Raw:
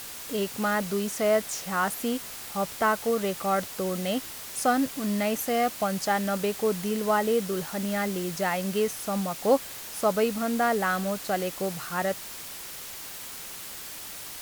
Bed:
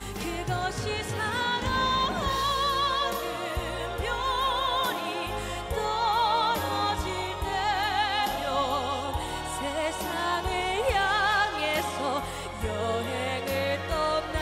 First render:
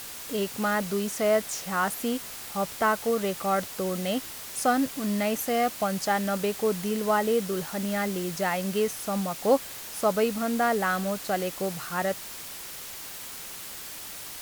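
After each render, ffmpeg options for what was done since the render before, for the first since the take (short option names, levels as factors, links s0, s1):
-af anull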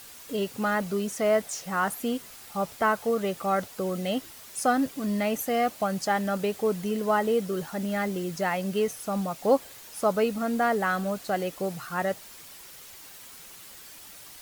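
-af "afftdn=nr=8:nf=-40"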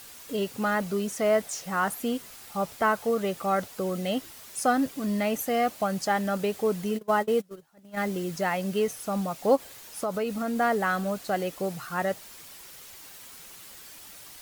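-filter_complex "[0:a]asplit=3[s0][s1][s2];[s0]afade=t=out:st=6.97:d=0.02[s3];[s1]agate=range=0.0447:threshold=0.0447:ratio=16:release=100:detection=peak,afade=t=in:st=6.97:d=0.02,afade=t=out:st=7.96:d=0.02[s4];[s2]afade=t=in:st=7.96:d=0.02[s5];[s3][s4][s5]amix=inputs=3:normalize=0,asplit=3[s6][s7][s8];[s6]afade=t=out:st=9.55:d=0.02[s9];[s7]acompressor=threshold=0.0562:ratio=4:attack=3.2:release=140:knee=1:detection=peak,afade=t=in:st=9.55:d=0.02,afade=t=out:st=10.55:d=0.02[s10];[s8]afade=t=in:st=10.55:d=0.02[s11];[s9][s10][s11]amix=inputs=3:normalize=0"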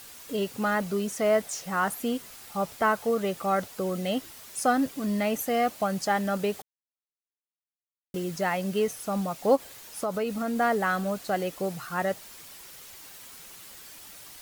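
-filter_complex "[0:a]asplit=3[s0][s1][s2];[s0]atrim=end=6.62,asetpts=PTS-STARTPTS,afade=t=out:st=6.616:d=0.004:c=hsin[s3];[s1]atrim=start=6.62:end=8.14,asetpts=PTS-STARTPTS,volume=0[s4];[s2]atrim=start=8.14,asetpts=PTS-STARTPTS,afade=t=in:d=0.004:c=hsin[s5];[s3][s4][s5]concat=n=3:v=0:a=1"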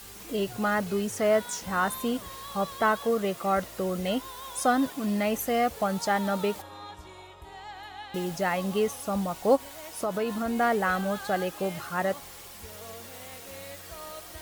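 -filter_complex "[1:a]volume=0.158[s0];[0:a][s0]amix=inputs=2:normalize=0"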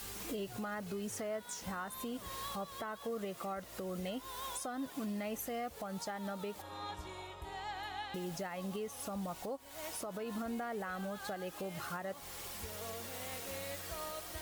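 -af "acompressor=threshold=0.0282:ratio=5,alimiter=level_in=2.37:limit=0.0631:level=0:latency=1:release=468,volume=0.422"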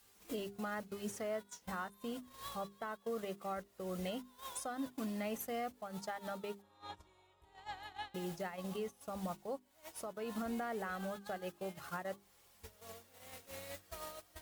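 -af "agate=range=0.0891:threshold=0.00891:ratio=16:detection=peak,bandreject=f=50:t=h:w=6,bandreject=f=100:t=h:w=6,bandreject=f=150:t=h:w=6,bandreject=f=200:t=h:w=6,bandreject=f=250:t=h:w=6,bandreject=f=300:t=h:w=6,bandreject=f=350:t=h:w=6,bandreject=f=400:t=h:w=6"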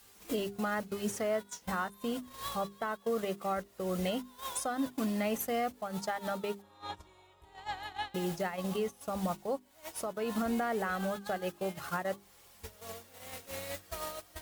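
-af "volume=2.37"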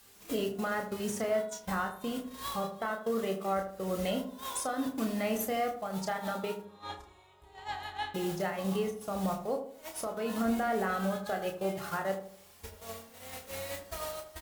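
-filter_complex "[0:a]asplit=2[s0][s1];[s1]adelay=31,volume=0.501[s2];[s0][s2]amix=inputs=2:normalize=0,asplit=2[s3][s4];[s4]adelay=79,lowpass=f=980:p=1,volume=0.447,asplit=2[s5][s6];[s6]adelay=79,lowpass=f=980:p=1,volume=0.46,asplit=2[s7][s8];[s8]adelay=79,lowpass=f=980:p=1,volume=0.46,asplit=2[s9][s10];[s10]adelay=79,lowpass=f=980:p=1,volume=0.46,asplit=2[s11][s12];[s12]adelay=79,lowpass=f=980:p=1,volume=0.46[s13];[s3][s5][s7][s9][s11][s13]amix=inputs=6:normalize=0"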